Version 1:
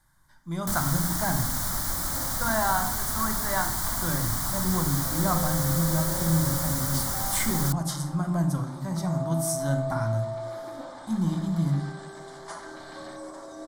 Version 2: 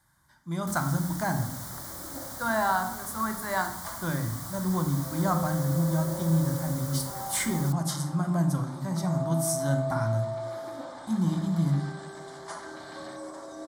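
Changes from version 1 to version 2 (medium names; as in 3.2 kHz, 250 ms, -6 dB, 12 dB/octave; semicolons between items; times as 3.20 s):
first sound -10.5 dB; master: add high-pass 63 Hz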